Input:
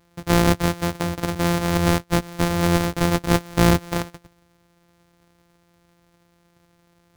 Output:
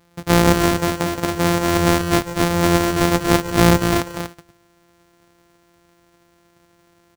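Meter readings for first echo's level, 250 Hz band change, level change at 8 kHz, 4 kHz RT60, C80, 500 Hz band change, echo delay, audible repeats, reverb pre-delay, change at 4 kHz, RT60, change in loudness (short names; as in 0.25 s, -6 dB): -14.5 dB, +3.5 dB, +5.0 dB, none, none, +5.0 dB, 0.143 s, 2, none, +4.0 dB, none, +3.5 dB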